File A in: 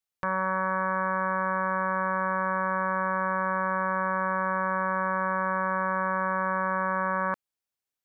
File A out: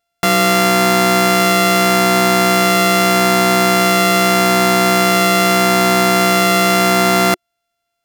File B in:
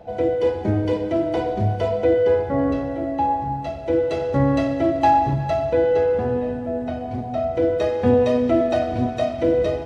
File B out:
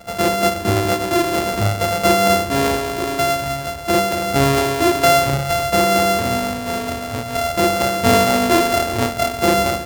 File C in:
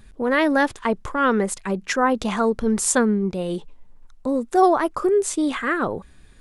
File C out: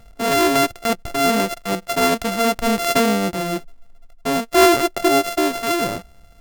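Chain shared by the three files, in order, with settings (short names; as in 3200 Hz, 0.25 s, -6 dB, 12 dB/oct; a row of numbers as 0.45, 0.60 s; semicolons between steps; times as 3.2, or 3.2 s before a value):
sample sorter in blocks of 64 samples; dynamic EQ 360 Hz, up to +6 dB, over -41 dBFS, Q 6.2; normalise peaks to -2 dBFS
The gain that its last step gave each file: +15.0, +2.5, +1.5 dB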